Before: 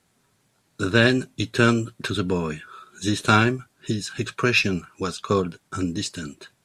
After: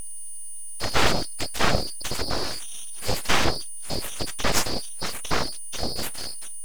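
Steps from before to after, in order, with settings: noise vocoder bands 6; whine 4700 Hz -29 dBFS; full-wave rectifier

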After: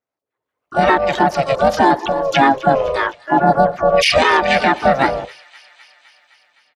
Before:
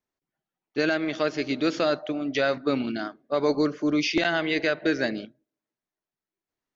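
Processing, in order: formant sharpening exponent 2; ring modulator 270 Hz; thin delay 0.257 s, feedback 68%, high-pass 2800 Hz, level -16 dB; AGC gain up to 13 dB; harmoniser -3 st -11 dB, +3 st -11 dB, +12 st -13 dB; HPF 420 Hz 6 dB/oct; maximiser +6.5 dB; gain -1 dB

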